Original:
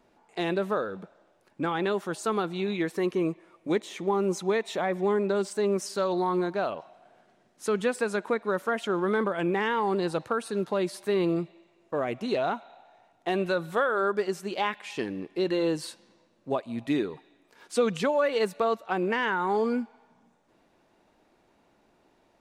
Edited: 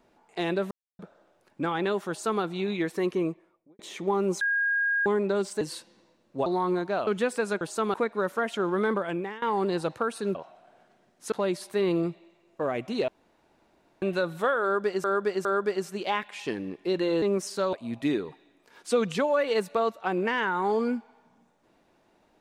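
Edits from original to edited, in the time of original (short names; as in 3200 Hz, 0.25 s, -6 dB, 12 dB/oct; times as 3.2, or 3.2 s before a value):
0.71–0.99 mute
2.09–2.42 copy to 8.24
3.11–3.79 studio fade out
4.41–5.06 bleep 1630 Hz -22.5 dBFS
5.61–6.12 swap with 15.73–16.58
6.73–7.7 move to 10.65
9.29–9.72 fade out, to -20.5 dB
12.41–13.35 room tone
13.96–14.37 loop, 3 plays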